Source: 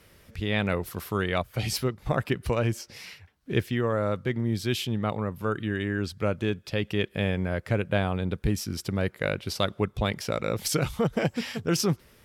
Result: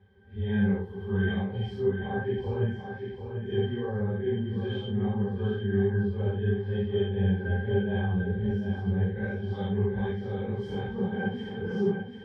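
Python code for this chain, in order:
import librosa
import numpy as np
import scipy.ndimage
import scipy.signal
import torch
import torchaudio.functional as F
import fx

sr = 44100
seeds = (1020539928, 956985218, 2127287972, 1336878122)

p1 = fx.phase_scramble(x, sr, seeds[0], window_ms=200)
p2 = fx.bass_treble(p1, sr, bass_db=-4, treble_db=-10)
p3 = fx.octave_resonator(p2, sr, note='G', decay_s=0.12)
p4 = p3 + fx.echo_feedback(p3, sr, ms=741, feedback_pct=40, wet_db=-7.0, dry=0)
y = p4 * librosa.db_to_amplitude(8.0)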